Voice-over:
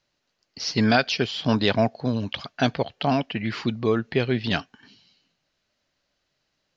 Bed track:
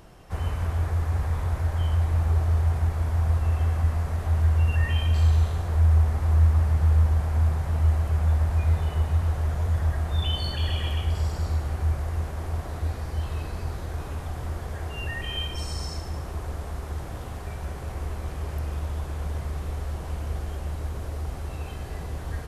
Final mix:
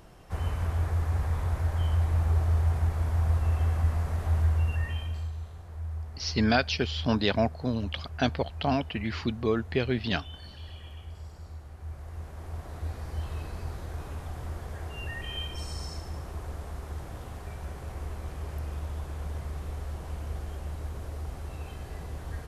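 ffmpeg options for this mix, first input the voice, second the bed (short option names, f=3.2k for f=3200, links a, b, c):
-filter_complex "[0:a]adelay=5600,volume=-4.5dB[a];[1:a]volume=9.5dB,afade=t=out:st=4.34:d=0.97:silence=0.188365,afade=t=in:st=11.77:d=1.38:silence=0.251189[b];[a][b]amix=inputs=2:normalize=0"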